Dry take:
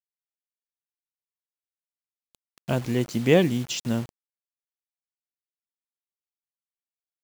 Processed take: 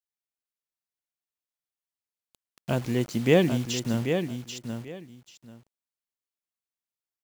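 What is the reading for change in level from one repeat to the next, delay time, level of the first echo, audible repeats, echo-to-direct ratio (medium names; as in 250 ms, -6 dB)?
-14.0 dB, 788 ms, -7.0 dB, 2, -7.0 dB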